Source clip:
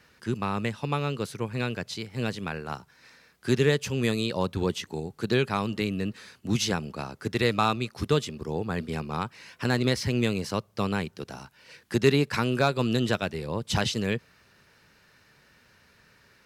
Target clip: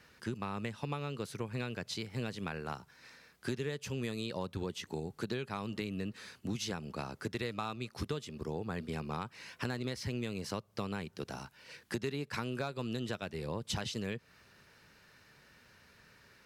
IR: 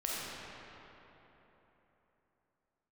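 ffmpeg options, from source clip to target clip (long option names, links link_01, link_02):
-af "acompressor=threshold=-32dB:ratio=6,volume=-2dB"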